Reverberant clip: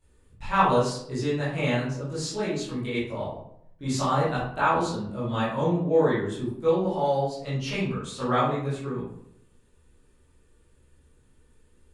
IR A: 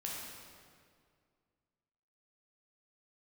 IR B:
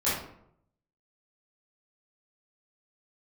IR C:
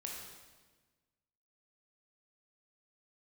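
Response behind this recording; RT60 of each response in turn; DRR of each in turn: B; 2.1 s, 0.70 s, 1.3 s; -4.0 dB, -12.0 dB, -1.5 dB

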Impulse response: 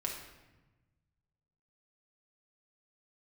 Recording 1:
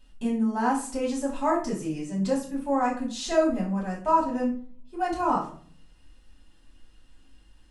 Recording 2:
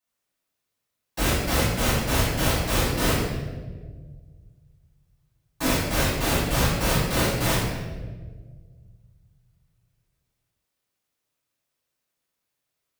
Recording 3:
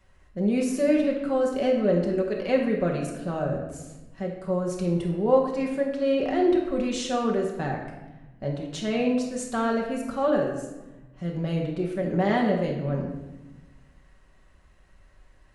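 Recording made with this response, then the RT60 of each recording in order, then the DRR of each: 3; 0.50 s, 1.5 s, 1.1 s; -6.0 dB, -12.5 dB, -1.5 dB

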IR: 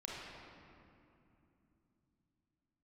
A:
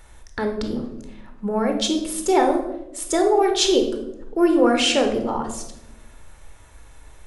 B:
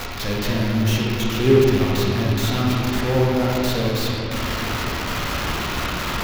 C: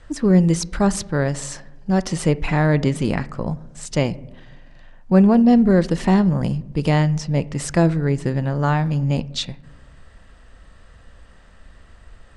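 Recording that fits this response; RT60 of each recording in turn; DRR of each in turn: B; 1.0 s, 2.9 s, no single decay rate; 4.0 dB, -5.0 dB, 15.0 dB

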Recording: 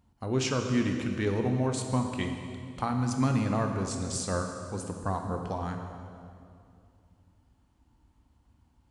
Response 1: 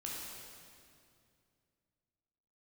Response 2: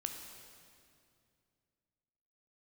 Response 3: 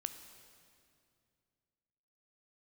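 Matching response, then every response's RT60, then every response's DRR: 2; 2.4 s, 2.4 s, 2.4 s; -4.5 dB, 4.0 dB, 8.5 dB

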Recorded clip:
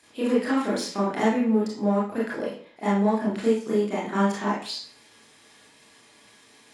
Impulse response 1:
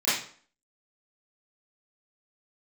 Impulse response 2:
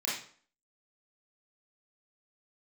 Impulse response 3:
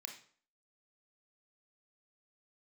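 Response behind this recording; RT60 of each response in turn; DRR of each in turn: 2; 0.50 s, 0.50 s, 0.50 s; -14.5 dB, -7.0 dB, 2.5 dB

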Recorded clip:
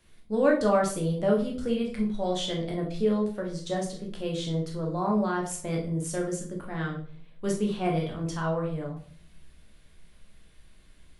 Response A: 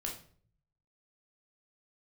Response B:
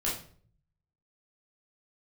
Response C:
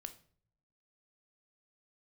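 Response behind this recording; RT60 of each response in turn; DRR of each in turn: A; 0.50 s, 0.50 s, 0.55 s; -1.0 dB, -7.0 dB, 8.5 dB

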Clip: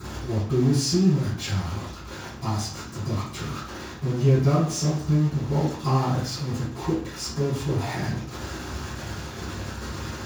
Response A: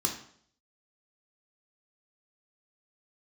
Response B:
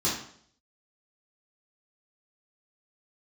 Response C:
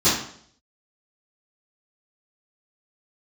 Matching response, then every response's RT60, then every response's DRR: C; 0.60 s, 0.60 s, 0.60 s; 1.0 dB, -8.5 dB, -16.5 dB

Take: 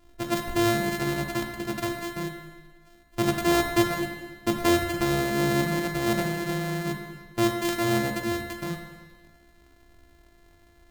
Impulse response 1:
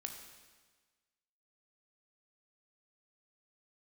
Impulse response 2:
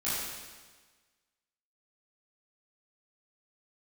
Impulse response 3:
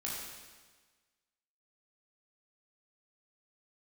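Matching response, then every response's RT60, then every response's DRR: 1; 1.4 s, 1.4 s, 1.4 s; 3.5 dB, -12.5 dB, -5.5 dB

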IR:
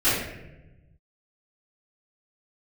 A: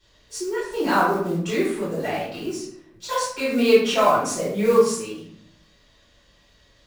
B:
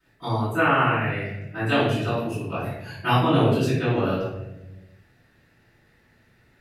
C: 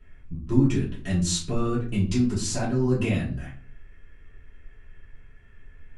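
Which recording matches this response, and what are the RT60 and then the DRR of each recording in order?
B; 0.65 s, 1.0 s, 0.40 s; -13.0 dB, -17.5 dB, -9.0 dB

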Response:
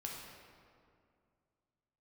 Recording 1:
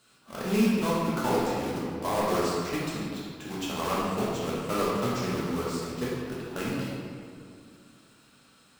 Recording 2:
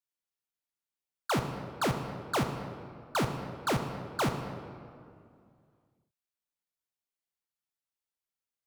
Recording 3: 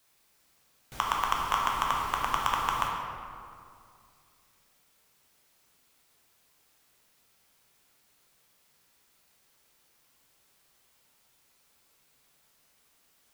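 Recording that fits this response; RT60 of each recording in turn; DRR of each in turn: 3; 2.3 s, 2.3 s, 2.3 s; -7.0 dB, 5.0 dB, -2.0 dB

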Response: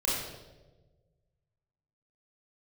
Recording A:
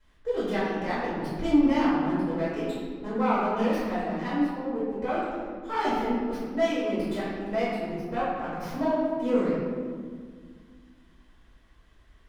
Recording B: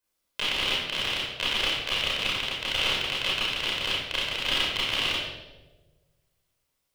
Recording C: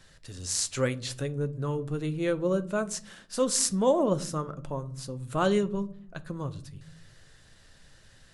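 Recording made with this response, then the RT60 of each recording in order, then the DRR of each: B; 1.8 s, 1.2 s, no single decay rate; -12.5 dB, -7.0 dB, 11.0 dB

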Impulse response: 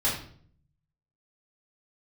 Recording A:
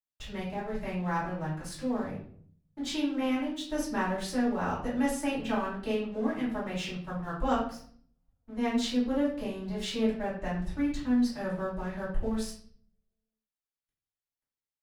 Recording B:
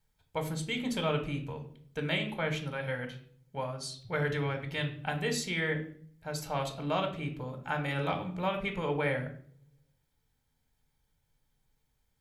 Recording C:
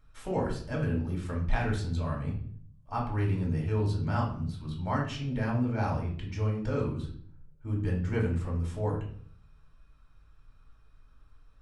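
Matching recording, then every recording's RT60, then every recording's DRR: A; 0.55 s, 0.55 s, 0.55 s; -9.0 dB, 4.5 dB, -2.0 dB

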